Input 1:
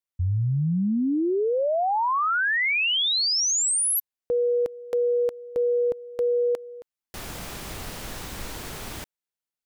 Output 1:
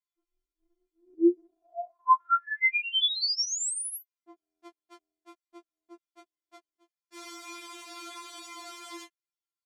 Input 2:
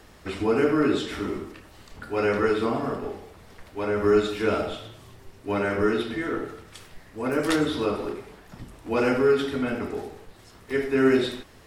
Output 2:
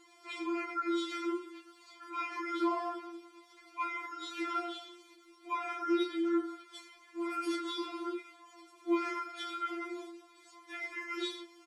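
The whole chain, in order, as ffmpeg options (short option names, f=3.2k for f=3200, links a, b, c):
-af "aecho=1:1:6.7:0.92,alimiter=limit=-15.5dB:level=0:latency=1:release=18,flanger=delay=15.5:depth=5.6:speed=0.47,highpass=250,lowpass=8k,afftfilt=real='re*4*eq(mod(b,16),0)':imag='im*4*eq(mod(b,16),0)':win_size=2048:overlap=0.75,volume=-2dB"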